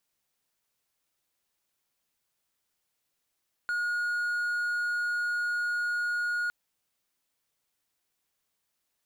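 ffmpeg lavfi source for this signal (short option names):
-f lavfi -i "aevalsrc='0.0562*(1-4*abs(mod(1440*t+0.25,1)-0.5))':d=2.81:s=44100"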